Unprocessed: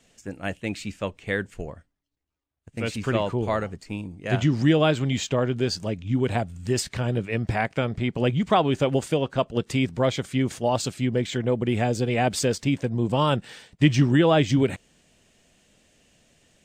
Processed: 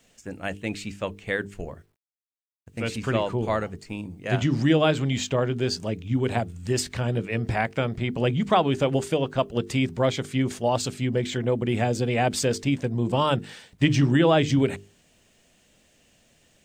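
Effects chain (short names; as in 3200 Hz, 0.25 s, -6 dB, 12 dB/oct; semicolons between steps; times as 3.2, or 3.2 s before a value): notches 50/100/150/200/250/300/350/400/450 Hz; bit-crush 12-bit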